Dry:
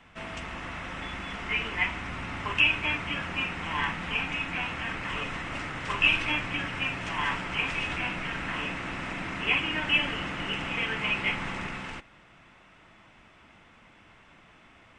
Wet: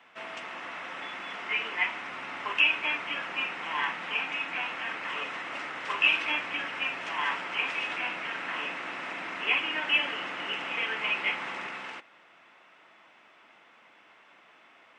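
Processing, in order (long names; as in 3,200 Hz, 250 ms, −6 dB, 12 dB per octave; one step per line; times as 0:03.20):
high-pass filter 420 Hz 12 dB per octave
parametric band 8,600 Hz −7 dB 1.1 octaves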